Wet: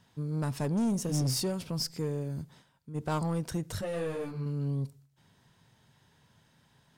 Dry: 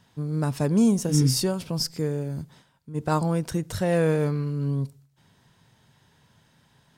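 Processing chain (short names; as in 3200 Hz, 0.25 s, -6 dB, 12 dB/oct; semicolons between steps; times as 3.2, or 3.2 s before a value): soft clip -20.5 dBFS, distortion -12 dB; 3.81–4.46 ensemble effect; gain -4 dB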